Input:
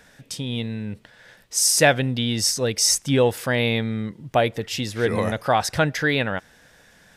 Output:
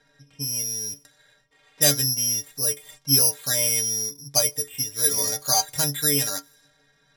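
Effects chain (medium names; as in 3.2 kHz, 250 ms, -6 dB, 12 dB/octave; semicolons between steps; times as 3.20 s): careless resampling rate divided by 8×, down filtered, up zero stuff; level-controlled noise filter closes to 2.7 kHz, open at -18.5 dBFS; inharmonic resonator 140 Hz, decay 0.21 s, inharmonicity 0.008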